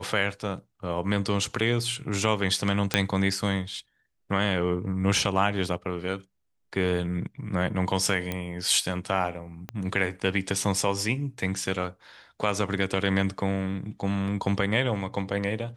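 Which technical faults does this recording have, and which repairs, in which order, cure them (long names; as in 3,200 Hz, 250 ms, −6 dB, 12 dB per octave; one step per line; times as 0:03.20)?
0:02.94: click −5 dBFS
0:08.32: click −15 dBFS
0:09.69: click −19 dBFS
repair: click removal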